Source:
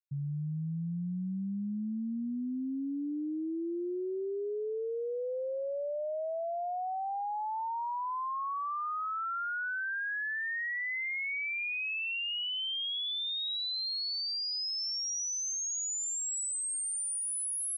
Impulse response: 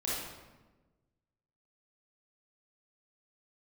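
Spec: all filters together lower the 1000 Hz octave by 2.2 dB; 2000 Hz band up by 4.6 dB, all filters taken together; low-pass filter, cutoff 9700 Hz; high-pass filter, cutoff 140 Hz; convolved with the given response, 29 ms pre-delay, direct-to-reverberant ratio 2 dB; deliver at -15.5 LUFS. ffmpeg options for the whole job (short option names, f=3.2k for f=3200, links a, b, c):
-filter_complex "[0:a]highpass=140,lowpass=9.7k,equalizer=f=1k:t=o:g=-5,equalizer=f=2k:t=o:g=7,asplit=2[a][b];[1:a]atrim=start_sample=2205,adelay=29[c];[b][c]afir=irnorm=-1:irlink=0,volume=-7.5dB[d];[a][d]amix=inputs=2:normalize=0,volume=14.5dB"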